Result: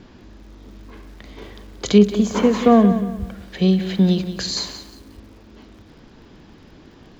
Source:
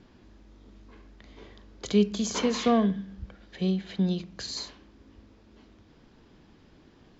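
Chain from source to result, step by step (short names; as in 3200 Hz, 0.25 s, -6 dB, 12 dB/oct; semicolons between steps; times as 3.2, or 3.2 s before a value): 1.98–3.2 bell 5100 Hz -13.5 dB 2.1 oct; maximiser +11.5 dB; lo-fi delay 0.18 s, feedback 35%, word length 7-bit, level -11.5 dB; gain -1 dB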